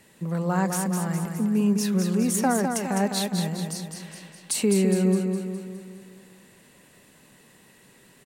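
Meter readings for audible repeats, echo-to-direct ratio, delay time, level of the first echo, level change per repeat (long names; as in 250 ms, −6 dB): 6, −4.0 dB, 206 ms, −5.5 dB, −5.5 dB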